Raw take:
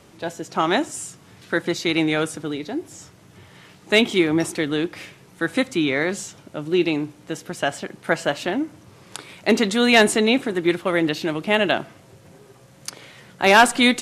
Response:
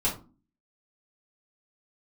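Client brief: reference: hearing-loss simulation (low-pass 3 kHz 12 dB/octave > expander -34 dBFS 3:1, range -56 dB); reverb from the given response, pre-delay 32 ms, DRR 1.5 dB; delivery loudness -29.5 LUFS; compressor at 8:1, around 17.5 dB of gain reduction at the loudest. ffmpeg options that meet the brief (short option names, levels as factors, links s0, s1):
-filter_complex "[0:a]acompressor=threshold=0.0447:ratio=8,asplit=2[s0][s1];[1:a]atrim=start_sample=2205,adelay=32[s2];[s1][s2]afir=irnorm=-1:irlink=0,volume=0.299[s3];[s0][s3]amix=inputs=2:normalize=0,lowpass=3000,agate=range=0.00158:threshold=0.02:ratio=3,volume=1.06"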